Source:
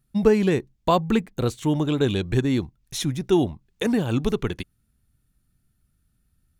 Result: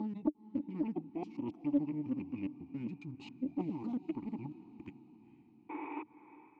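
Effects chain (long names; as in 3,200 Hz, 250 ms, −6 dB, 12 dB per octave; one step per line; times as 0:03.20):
slices reordered back to front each 137 ms, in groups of 3
sound drawn into the spectrogram noise, 0:05.69–0:06.03, 270–3,700 Hz −30 dBFS
high-shelf EQ 8,600 Hz −6.5 dB
gain on a spectral selection 0:03.13–0:03.60, 250–1,300 Hz +11 dB
formants moved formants −6 semitones
reversed playback
downward compressor 6 to 1, threshold −26 dBFS, peak gain reduction 17.5 dB
reversed playback
formant filter u
parametric band 2,100 Hz −10 dB 0.66 octaves
on a send: feedback delay with all-pass diffusion 470 ms, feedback 53%, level −15.5 dB
on the sum: highs frequency-modulated by the lows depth 0.24 ms
level +3 dB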